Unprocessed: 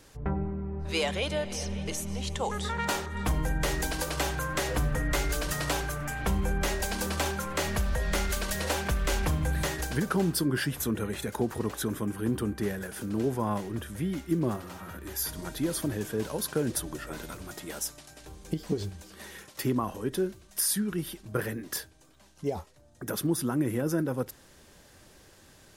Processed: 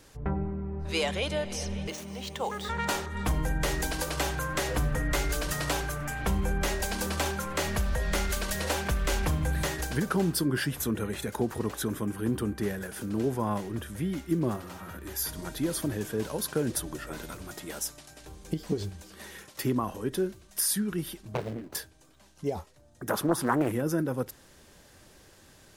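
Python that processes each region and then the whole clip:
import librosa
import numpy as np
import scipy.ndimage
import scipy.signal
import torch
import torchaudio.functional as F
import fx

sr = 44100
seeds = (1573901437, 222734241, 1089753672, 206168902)

y = fx.median_filter(x, sr, points=5, at=(1.87, 2.68), fade=0.02)
y = fx.highpass(y, sr, hz=230.0, slope=6, at=(1.87, 2.68), fade=0.02)
y = fx.dmg_tone(y, sr, hz=9000.0, level_db=-62.0, at=(1.87, 2.68), fade=0.02)
y = fx.chain(y, sr, fx.median_filter(points=25),
    fx.doppler_dist(depth_ms=0.73), at=(21.34, 21.75))
y = fx.chain(y, sr, fx.peak_eq(hz=910.0, db=14.0, octaves=1.2),
    fx.doppler_dist(depth_ms=0.44), at=(23.09, 23.72))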